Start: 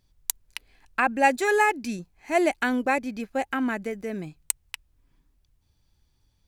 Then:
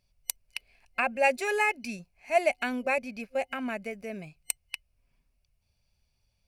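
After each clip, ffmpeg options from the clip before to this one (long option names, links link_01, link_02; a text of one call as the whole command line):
ffmpeg -i in.wav -af "superequalizer=6b=0.355:8b=2.24:12b=2.82:14b=1.78:16b=1.58,volume=-7dB" out.wav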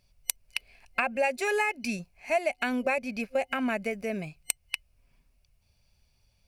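ffmpeg -i in.wav -af "acompressor=threshold=-30dB:ratio=5,volume=6dB" out.wav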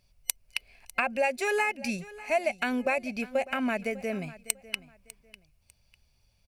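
ffmpeg -i in.wav -af "aecho=1:1:599|1198:0.119|0.0309" out.wav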